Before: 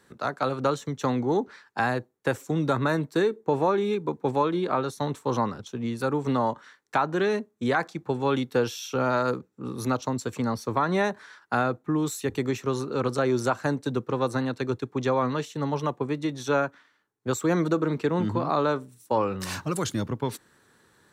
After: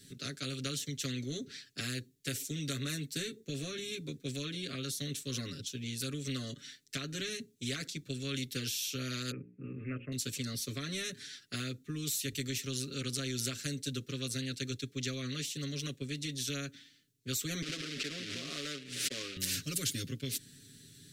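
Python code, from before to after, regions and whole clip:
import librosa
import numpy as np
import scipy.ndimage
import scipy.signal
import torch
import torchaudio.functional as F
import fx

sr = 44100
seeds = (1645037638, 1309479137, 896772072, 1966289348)

y = fx.chain(x, sr, fx.steep_lowpass(hz=2600.0, slope=96),
    fx.hum_notches(base_hz=60, count=9), at=(9.31, 10.12))
y = fx.chain(y, sr, fx.quant_companded(bits=4),
    fx.bandpass_edges(low_hz=460.0, high_hz=2700.0),
    fx.pre_swell(db_per_s=94.0), at=(17.62, 19.37))
y = scipy.signal.sosfilt(scipy.signal.cheby1(2, 1.0, [210.0, 3600.0], 'bandstop', fs=sr, output='sos'), y)
y = y + 0.96 * np.pad(y, (int(7.3 * sr / 1000.0), 0))[:len(y)]
y = fx.spectral_comp(y, sr, ratio=2.0)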